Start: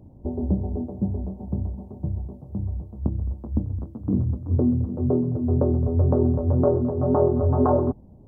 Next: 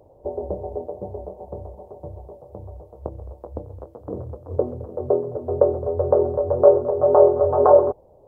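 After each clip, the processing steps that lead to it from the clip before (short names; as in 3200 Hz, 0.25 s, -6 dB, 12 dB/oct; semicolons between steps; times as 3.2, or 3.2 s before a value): resonant low shelf 340 Hz -13.5 dB, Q 3; gain +4 dB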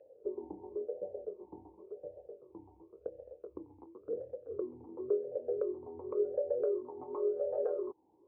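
compressor 3:1, threshold -25 dBFS, peak gain reduction 13.5 dB; vowel sweep e-u 0.93 Hz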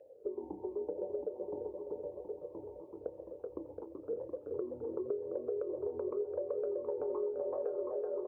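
bouncing-ball echo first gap 0.38 s, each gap 0.9×, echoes 5; compressor 6:1, threshold -35 dBFS, peak gain reduction 9.5 dB; gain +2 dB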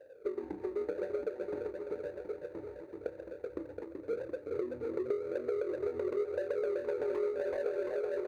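median filter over 41 samples; gain +3.5 dB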